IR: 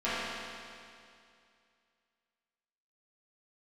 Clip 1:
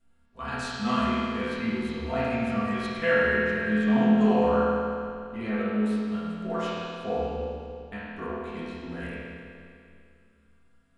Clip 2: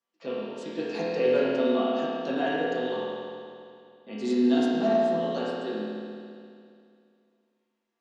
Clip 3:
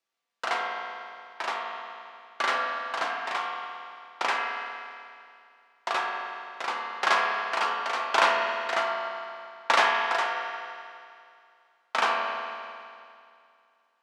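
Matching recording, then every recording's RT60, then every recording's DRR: 1; 2.4 s, 2.4 s, 2.4 s; -14.5 dB, -10.5 dB, -2.0 dB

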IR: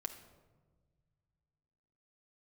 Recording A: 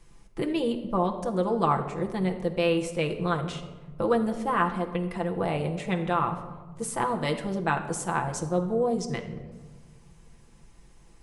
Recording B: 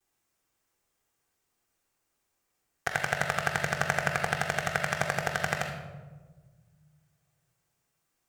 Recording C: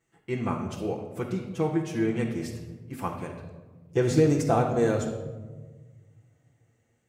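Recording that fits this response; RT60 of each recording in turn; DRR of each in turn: A; 1.4 s, 1.4 s, 1.4 s; 2.5 dB, -16.0 dB, -7.0 dB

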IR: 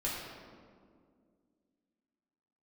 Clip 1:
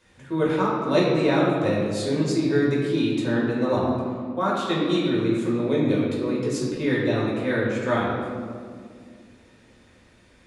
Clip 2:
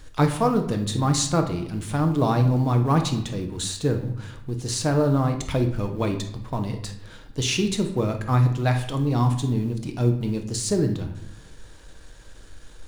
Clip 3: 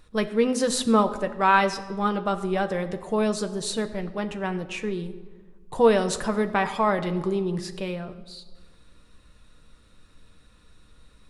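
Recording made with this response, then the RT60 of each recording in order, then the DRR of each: 1; 2.1 s, 0.80 s, 1.4 s; -7.0 dB, 4.5 dB, 6.5 dB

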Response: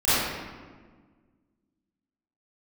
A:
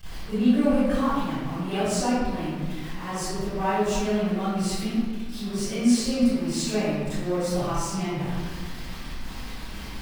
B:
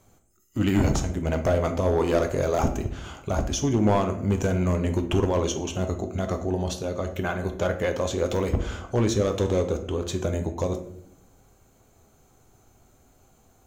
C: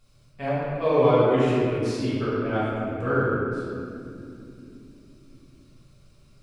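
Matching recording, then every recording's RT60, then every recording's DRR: A; 1.5 s, 0.70 s, no single decay rate; -16.5 dB, 5.5 dB, -10.0 dB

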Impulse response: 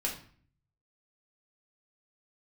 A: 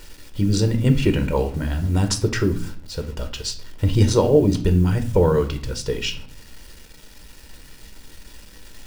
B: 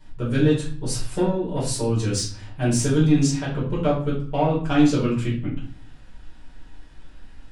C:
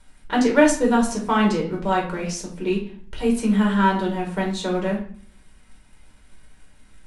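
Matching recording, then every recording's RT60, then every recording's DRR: C; 0.50 s, 0.45 s, 0.50 s; 6.0 dB, -8.5 dB, -2.0 dB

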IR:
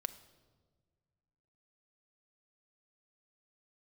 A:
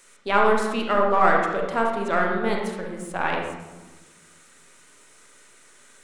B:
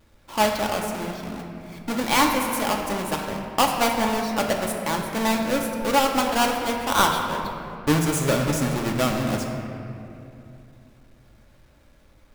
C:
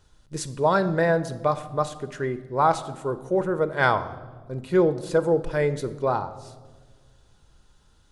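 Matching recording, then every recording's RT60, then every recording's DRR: C; 1.2 s, 2.8 s, no single decay rate; 0.0 dB, 0.5 dB, 11.0 dB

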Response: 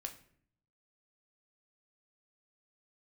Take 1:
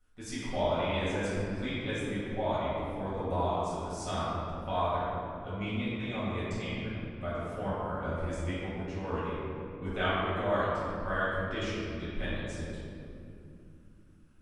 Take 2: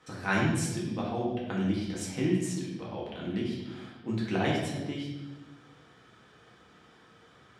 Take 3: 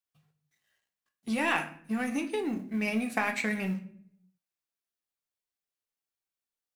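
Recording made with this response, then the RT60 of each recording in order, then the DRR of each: 3; 2.7 s, 1.0 s, 0.60 s; -11.5 dB, -5.0 dB, 4.0 dB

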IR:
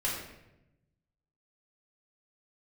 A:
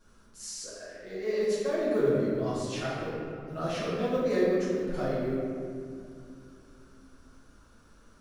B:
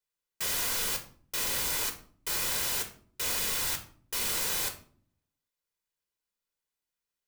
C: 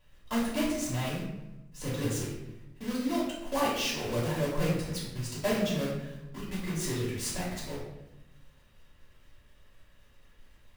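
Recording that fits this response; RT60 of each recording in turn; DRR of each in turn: C; 2.4 s, 0.50 s, 0.90 s; -11.0 dB, 4.5 dB, -6.5 dB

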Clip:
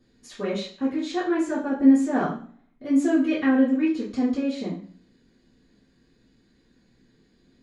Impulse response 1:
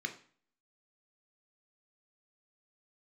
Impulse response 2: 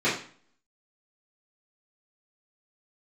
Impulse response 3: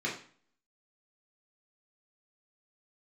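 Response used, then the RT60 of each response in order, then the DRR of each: 2; 0.45 s, 0.45 s, 0.45 s; 5.5 dB, -12.5 dB, -4.5 dB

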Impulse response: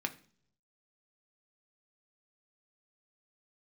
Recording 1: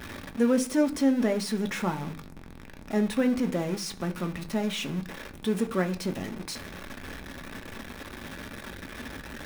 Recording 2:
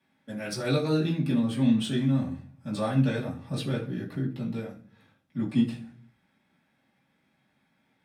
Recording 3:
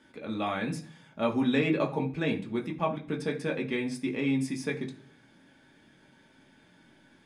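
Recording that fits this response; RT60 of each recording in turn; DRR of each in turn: 1; 0.55 s, 0.55 s, 0.55 s; 5.5 dB, -7.0 dB, 0.0 dB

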